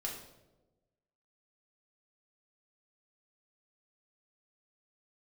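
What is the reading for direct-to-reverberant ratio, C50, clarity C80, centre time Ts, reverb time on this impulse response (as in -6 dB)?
-2.5 dB, 5.0 dB, 7.5 dB, 36 ms, 1.1 s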